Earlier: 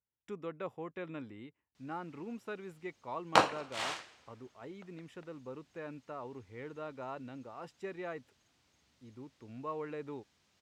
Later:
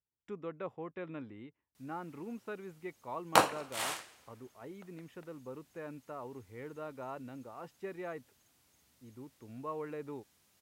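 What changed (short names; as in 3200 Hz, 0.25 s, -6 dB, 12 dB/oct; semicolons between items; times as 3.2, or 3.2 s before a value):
background: remove air absorption 160 m; master: add high shelf 4300 Hz -11 dB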